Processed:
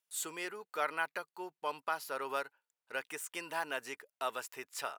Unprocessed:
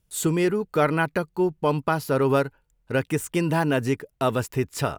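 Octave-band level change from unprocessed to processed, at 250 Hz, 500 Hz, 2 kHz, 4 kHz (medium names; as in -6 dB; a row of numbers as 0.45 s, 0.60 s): -26.5 dB, -18.5 dB, -9.0 dB, -8.5 dB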